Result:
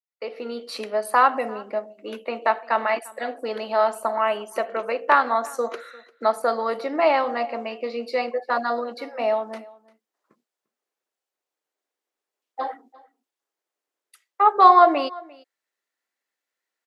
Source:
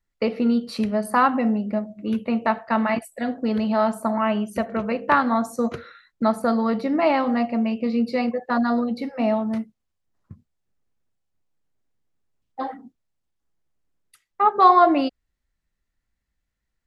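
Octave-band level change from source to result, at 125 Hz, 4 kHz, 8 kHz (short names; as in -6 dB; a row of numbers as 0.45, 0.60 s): under -15 dB, +1.5 dB, n/a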